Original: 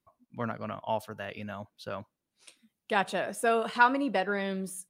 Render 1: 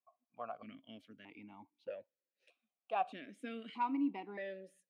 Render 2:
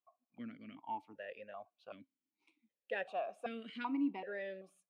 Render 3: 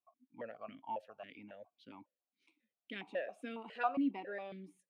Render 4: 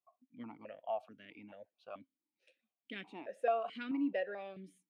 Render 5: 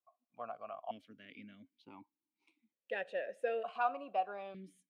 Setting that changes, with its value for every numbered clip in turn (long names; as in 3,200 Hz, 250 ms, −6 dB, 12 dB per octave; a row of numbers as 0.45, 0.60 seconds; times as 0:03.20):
formant filter that steps through the vowels, speed: 1.6, 2.6, 7.3, 4.6, 1.1 Hertz